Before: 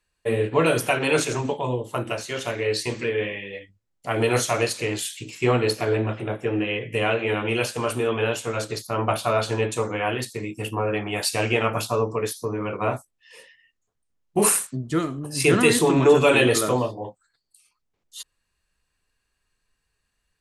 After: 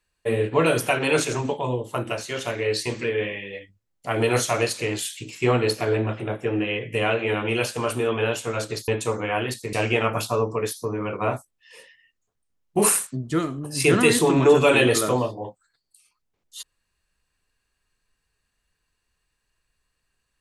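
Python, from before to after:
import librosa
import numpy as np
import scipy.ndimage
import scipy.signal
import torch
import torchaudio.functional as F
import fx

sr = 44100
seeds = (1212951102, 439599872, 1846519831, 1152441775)

y = fx.edit(x, sr, fx.cut(start_s=8.88, length_s=0.71),
    fx.cut(start_s=10.44, length_s=0.89), tone=tone)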